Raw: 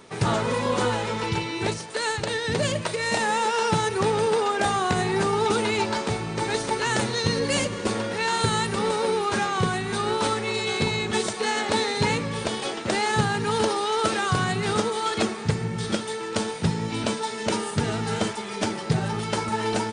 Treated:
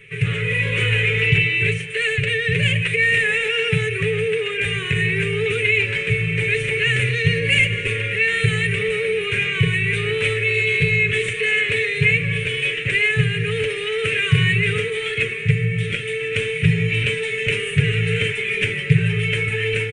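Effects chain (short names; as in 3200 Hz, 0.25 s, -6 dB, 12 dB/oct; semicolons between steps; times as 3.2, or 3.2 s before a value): EQ curve 150 Hz 0 dB, 260 Hz -25 dB, 450 Hz +10 dB, 740 Hz -25 dB, 1700 Hz +8 dB, 2500 Hz +10 dB, 4800 Hz -27 dB, 8800 Hz -12 dB; in parallel at +1 dB: limiter -20 dBFS, peak gain reduction 12 dB; on the sum: comb 7.1 ms, depth 45%; AGC; band shelf 770 Hz -15 dB 2.5 oct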